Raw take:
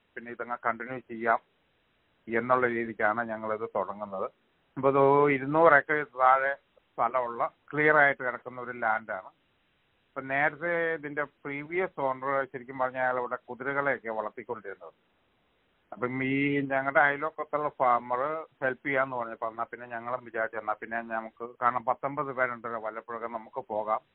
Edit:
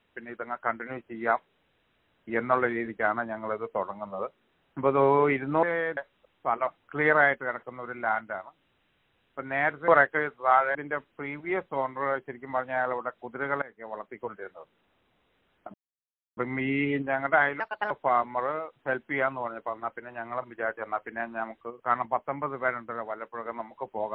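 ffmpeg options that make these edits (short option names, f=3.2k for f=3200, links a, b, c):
-filter_complex "[0:a]asplit=10[a][b][c][d][e][f][g][h][i][j];[a]atrim=end=5.632[k];[b]atrim=start=10.668:end=11.012[l];[c]atrim=start=6.498:end=7.202[m];[d]atrim=start=7.458:end=10.672[n];[e]atrim=start=5.628:end=6.502[o];[f]atrim=start=11.008:end=13.88,asetpts=PTS-STARTPTS,afade=t=out:st=2.868:d=0.004:c=hsin:silence=0.0794328[p];[g]atrim=start=13.88:end=16,asetpts=PTS-STARTPTS,afade=t=in:d=0.61:silence=0.0794328,afade=t=out:st=2.116:d=0.004:c=hsin,apad=pad_dur=0.63[q];[h]atrim=start=16:end=17.234,asetpts=PTS-STARTPTS,afade=t=in:d=0.004:c=hsin[r];[i]atrim=start=17.23:end=17.66,asetpts=PTS-STARTPTS,asetrate=62181,aresample=44100[s];[j]atrim=start=17.656[t];[k][l]acrossfade=d=0.004:c1=hsin:c2=hsin[u];[u][m]acrossfade=d=0.004:c1=hsin:c2=hsin[v];[v][n]acrossfade=d=0.004:c1=hsin:c2=hsin[w];[w][o]acrossfade=d=0.004:c1=hsin:c2=hsin[x];[p][q][r]concat=n=3:v=0:a=1[y];[x][y]acrossfade=d=0.004:c1=hsin:c2=hsin[z];[z][s]acrossfade=d=0.004:c1=hsin:c2=hsin[aa];[aa][t]acrossfade=d=0.004:c1=hsin:c2=hsin"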